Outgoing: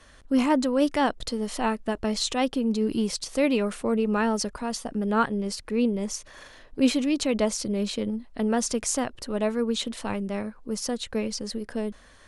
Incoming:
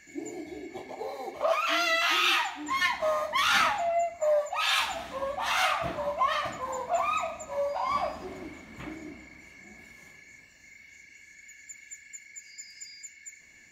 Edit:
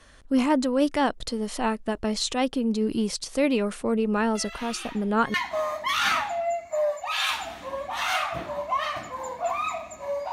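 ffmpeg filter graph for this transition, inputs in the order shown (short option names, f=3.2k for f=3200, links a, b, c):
-filter_complex "[1:a]asplit=2[a][b];[0:a]apad=whole_dur=10.32,atrim=end=10.32,atrim=end=5.342[c];[b]atrim=start=2.828:end=7.81[d];[a]atrim=start=1.84:end=2.83,asetpts=PTS-STARTPTS,volume=-15dB,afade=t=in:d=0.004:c=hsin,afade=t=out:st=0.986:d=0.004:c=hsin,adelay=4350[e];[c][d]acrossfade=d=0.004:c1=hsin:c2=hsin[f];[f][e]amix=inputs=2:normalize=0"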